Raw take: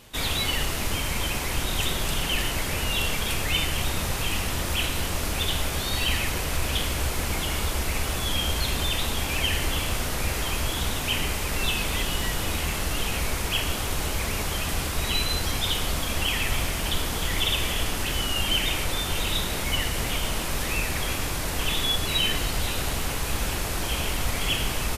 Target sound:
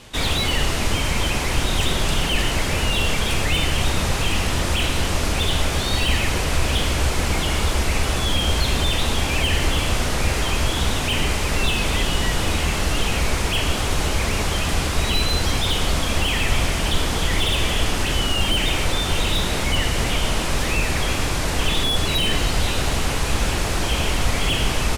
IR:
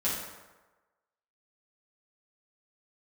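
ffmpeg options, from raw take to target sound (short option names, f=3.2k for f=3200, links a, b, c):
-filter_complex "[0:a]lowpass=8.7k,acrossover=split=870[a][b];[b]asoftclip=type=tanh:threshold=-26.5dB[c];[a][c]amix=inputs=2:normalize=0,volume=7dB"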